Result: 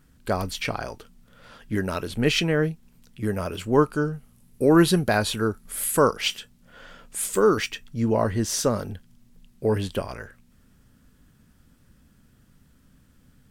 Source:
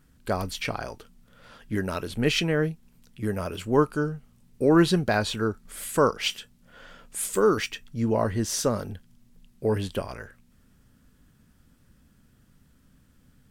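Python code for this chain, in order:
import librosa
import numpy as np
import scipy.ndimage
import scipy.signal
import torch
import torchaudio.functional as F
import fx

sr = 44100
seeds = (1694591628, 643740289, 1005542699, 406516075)

y = fx.peak_eq(x, sr, hz=11000.0, db=11.0, octaves=0.48, at=(4.13, 6.21))
y = y * 10.0 ** (2.0 / 20.0)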